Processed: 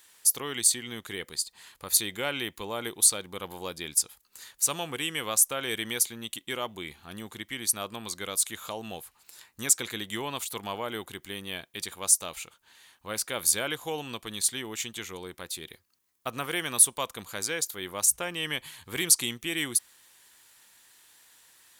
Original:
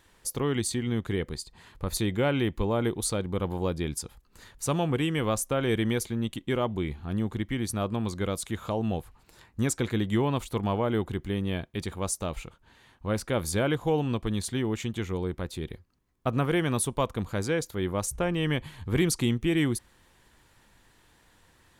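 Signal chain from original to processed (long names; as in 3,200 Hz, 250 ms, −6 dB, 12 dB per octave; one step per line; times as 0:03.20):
spectral tilt +4.5 dB per octave
level −3 dB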